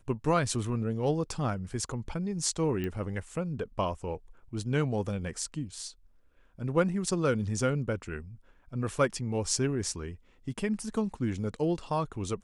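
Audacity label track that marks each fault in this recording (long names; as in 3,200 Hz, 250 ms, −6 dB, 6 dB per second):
2.840000	2.840000	click −22 dBFS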